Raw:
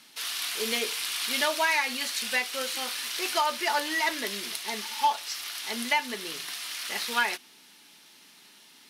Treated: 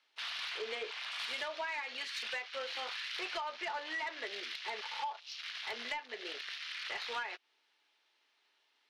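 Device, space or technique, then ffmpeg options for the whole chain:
AM radio: -filter_complex "[0:a]afwtdn=0.0126,highpass=f=400:w=0.5412,highpass=f=400:w=1.3066,asettb=1/sr,asplit=3[s0][s1][s2];[s0]atrim=end=0.584[s3];[s1]atrim=start=0.58:end=1.19,asetpts=PTS-STARTPTS,afade=t=in:d=0.004:c=qsin,afade=t=out:st=0.606:d=0.004:c=qsin,equalizer=f=5600:w=0.3:g=-5[s4];[s2]atrim=start=1.186[s5];[s3][s4]acrossfade=d=0.004:c1=hsin:c2=qsin[s6];[s6][s5]acrossfade=d=0.004:c1=qsin:c2=hsin,highpass=110,lowpass=3500,acompressor=threshold=0.0178:ratio=6,asoftclip=type=tanh:threshold=0.0316"

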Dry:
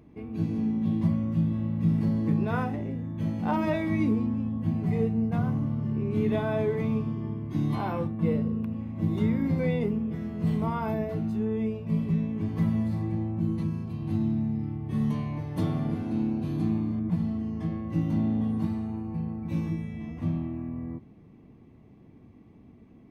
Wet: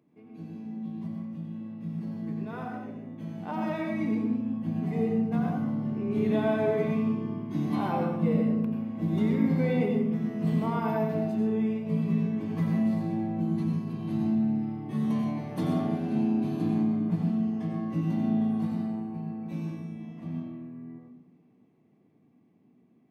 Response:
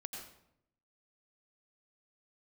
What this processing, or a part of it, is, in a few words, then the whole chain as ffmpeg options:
far laptop microphone: -filter_complex "[1:a]atrim=start_sample=2205[s0];[0:a][s0]afir=irnorm=-1:irlink=0,highpass=f=140:w=0.5412,highpass=f=140:w=1.3066,dynaudnorm=f=400:g=21:m=3.98,volume=0.398"

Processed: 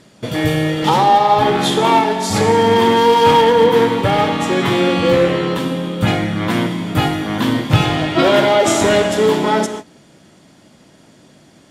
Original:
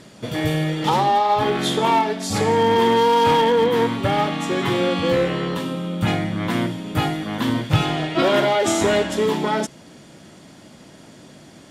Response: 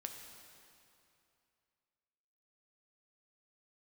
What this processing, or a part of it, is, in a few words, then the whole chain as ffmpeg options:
keyed gated reverb: -filter_complex "[0:a]asplit=3[s0][s1][s2];[1:a]atrim=start_sample=2205[s3];[s1][s3]afir=irnorm=-1:irlink=0[s4];[s2]apad=whole_len=515997[s5];[s4][s5]sidechaingate=range=0.0224:threshold=0.0112:ratio=16:detection=peak,volume=2.37[s6];[s0][s6]amix=inputs=2:normalize=0,volume=0.708"

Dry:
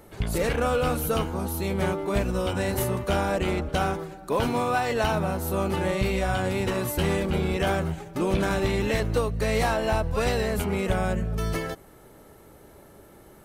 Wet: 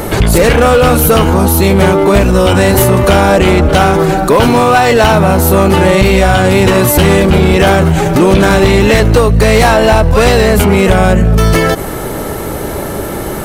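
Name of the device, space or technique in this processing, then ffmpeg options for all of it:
loud club master: -af "acompressor=threshold=0.0355:ratio=2,asoftclip=type=hard:threshold=0.0596,alimiter=level_in=44.7:limit=0.891:release=50:level=0:latency=1,volume=0.891"

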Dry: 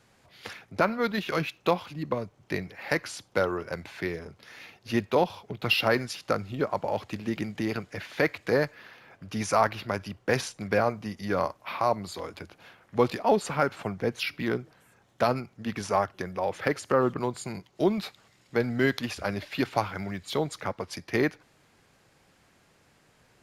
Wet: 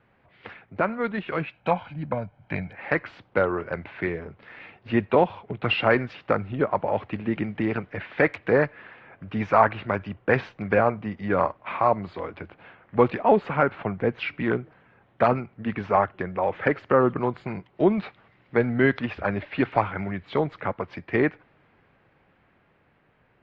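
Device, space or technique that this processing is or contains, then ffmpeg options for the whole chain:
action camera in a waterproof case: -filter_complex "[0:a]asettb=1/sr,asplit=3[s0][s1][s2];[s0]atrim=end=1.534[s3];[s1]atrim=start=1.53:end=2.75,asetpts=PTS-STARTPTS,afade=t=in:d=0.004:c=qsin,afade=t=out:st=1.216:d=0.004:c=qsin,aecho=1:1:1.3:0.69,atrim=end_sample=53802[s4];[s2]atrim=start=2.746[s5];[s3][s4]acrossfade=d=0.004:c1=hsin:c2=qsin[s6];[s6][s5]acrossfade=d=0.004:c1=qsin:c2=hsin,lowpass=f=2600:w=0.5412,lowpass=f=2600:w=1.3066,dynaudnorm=f=740:g=7:m=1.68" -ar 48000 -c:a aac -b:a 48k

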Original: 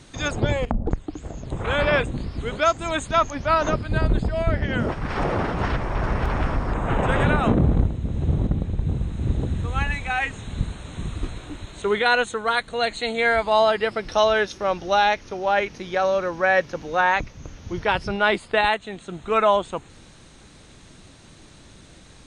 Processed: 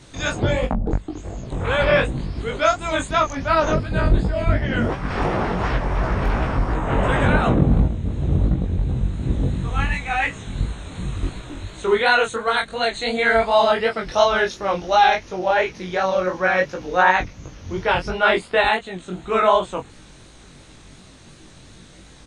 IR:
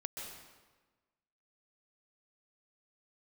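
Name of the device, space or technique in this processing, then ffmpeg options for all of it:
double-tracked vocal: -filter_complex "[0:a]asplit=2[s0][s1];[s1]adelay=22,volume=0.562[s2];[s0][s2]amix=inputs=2:normalize=0,flanger=delay=15.5:depth=7:speed=2.8,volume=1.58"

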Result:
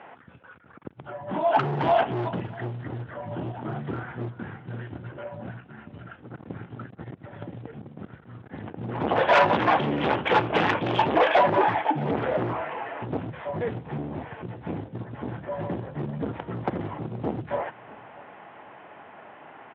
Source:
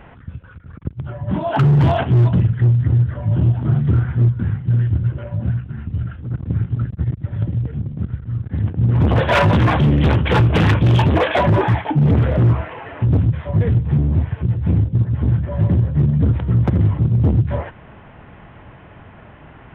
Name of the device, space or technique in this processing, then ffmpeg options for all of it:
intercom: -af "highpass=360,lowpass=3600,equalizer=f=790:t=o:w=0.52:g=5,aecho=1:1:642:0.0708,asoftclip=type=tanh:threshold=0.447,volume=0.794"

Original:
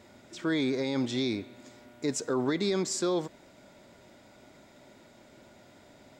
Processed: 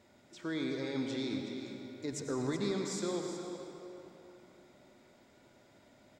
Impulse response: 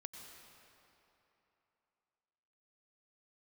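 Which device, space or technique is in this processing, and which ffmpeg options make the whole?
cave: -filter_complex "[0:a]aecho=1:1:373:0.316[s0];[1:a]atrim=start_sample=2205[s1];[s0][s1]afir=irnorm=-1:irlink=0,asettb=1/sr,asplit=3[s2][s3][s4];[s2]atrim=end=2.124[s5];[s3]atrim=start=2.12:end=2.72,asetpts=PTS-STARTPTS,afade=t=in:d=0.004:c=qsin,afade=t=out:st=0.596:d=0.004:c=qsin,lowshelf=f=130:g=12[s6];[s4]atrim=start=2.716[s7];[s5][s6]acrossfade=d=0.004:c1=hsin:c2=qsin[s8];[s8][s7]acrossfade=d=0.004:c1=qsin:c2=hsin,volume=0.708"

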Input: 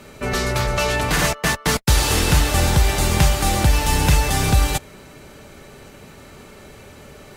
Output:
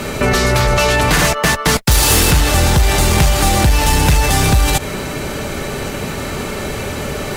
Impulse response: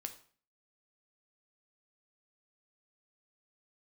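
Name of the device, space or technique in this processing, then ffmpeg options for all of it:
loud club master: -filter_complex "[0:a]acompressor=threshold=0.112:ratio=2,asoftclip=type=hard:threshold=0.188,alimiter=level_in=16.8:limit=0.891:release=50:level=0:latency=1,asettb=1/sr,asplit=3[s0][s1][s2];[s0]atrim=end=1.914[s3];[s1]atrim=start=1.91:end=2.31,asetpts=PTS-STARTPTS,afade=t=in:d=0.004:c=qsin,afade=t=out:st=0.396:d=0.004:c=qsin,highshelf=f=9400:g=10[s4];[s2]atrim=start=2.306[s5];[s3][s4]acrossfade=d=0.004:c1=hsin:c2=qsin[s6];[s6][s5]acrossfade=d=0.004:c1=qsin:c2=hsin,volume=0.562"

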